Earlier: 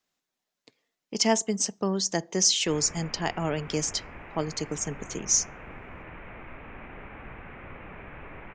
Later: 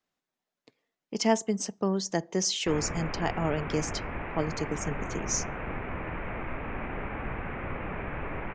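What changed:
background +9.0 dB; master: add treble shelf 3.1 kHz -9.5 dB

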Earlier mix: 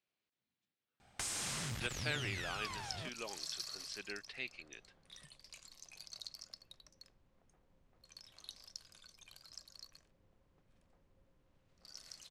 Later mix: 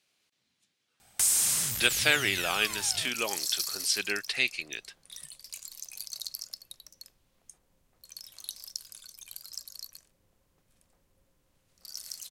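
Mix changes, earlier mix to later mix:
speech +11.0 dB; master: remove tape spacing loss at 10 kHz 21 dB

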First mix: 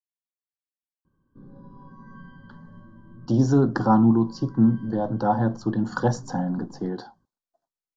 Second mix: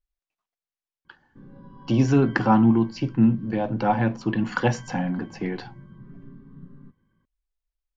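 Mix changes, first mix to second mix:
speech: entry -1.40 s; master: remove Butterworth band-stop 2.4 kHz, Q 0.91

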